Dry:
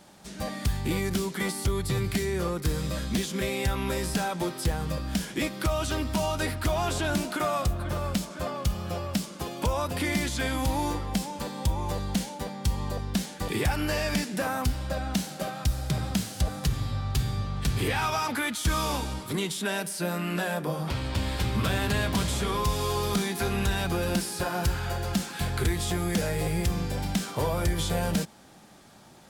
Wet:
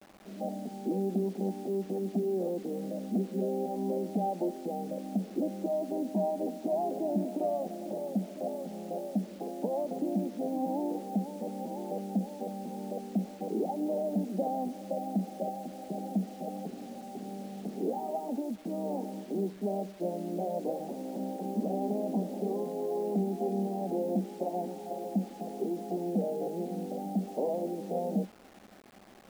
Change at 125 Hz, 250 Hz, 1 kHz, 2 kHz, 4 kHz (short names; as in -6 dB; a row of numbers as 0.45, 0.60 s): -12.0 dB, -1.5 dB, -5.5 dB, under -25 dB, -23.5 dB